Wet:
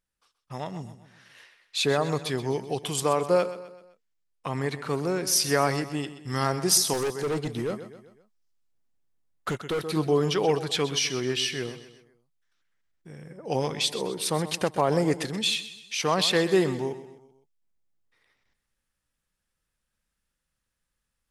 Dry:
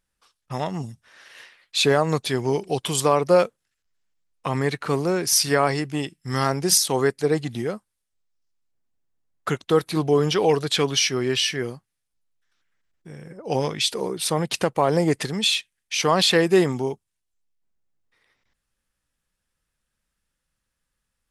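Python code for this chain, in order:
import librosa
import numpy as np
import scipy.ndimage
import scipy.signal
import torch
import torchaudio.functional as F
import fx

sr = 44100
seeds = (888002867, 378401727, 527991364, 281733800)

y = fx.echo_feedback(x, sr, ms=128, feedback_pct=46, wet_db=-13.5)
y = fx.clip_hard(y, sr, threshold_db=-22.0, at=(6.93, 9.88))
y = fx.rider(y, sr, range_db=4, speed_s=2.0)
y = F.gain(torch.from_numpy(y), -4.5).numpy()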